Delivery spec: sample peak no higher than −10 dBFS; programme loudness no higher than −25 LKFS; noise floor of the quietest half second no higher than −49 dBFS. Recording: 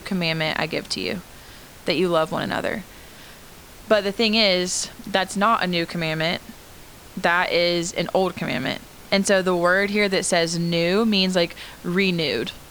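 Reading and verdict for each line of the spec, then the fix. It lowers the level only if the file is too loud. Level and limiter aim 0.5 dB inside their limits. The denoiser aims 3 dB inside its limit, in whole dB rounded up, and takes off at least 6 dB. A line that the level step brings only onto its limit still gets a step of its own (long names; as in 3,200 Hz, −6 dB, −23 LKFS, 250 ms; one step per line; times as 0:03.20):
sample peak −4.5 dBFS: out of spec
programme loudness −21.5 LKFS: out of spec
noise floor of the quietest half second −43 dBFS: out of spec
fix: broadband denoise 6 dB, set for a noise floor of −43 dBFS
level −4 dB
brickwall limiter −10.5 dBFS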